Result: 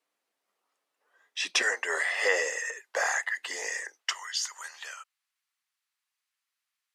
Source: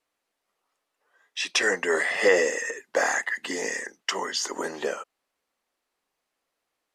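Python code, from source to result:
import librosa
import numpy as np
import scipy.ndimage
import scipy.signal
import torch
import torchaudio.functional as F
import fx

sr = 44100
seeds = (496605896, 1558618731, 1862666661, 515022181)

y = fx.bessel_highpass(x, sr, hz=fx.steps((0.0, 180.0), (1.62, 730.0), (4.12, 1700.0)), order=4)
y = y * 10.0 ** (-2.0 / 20.0)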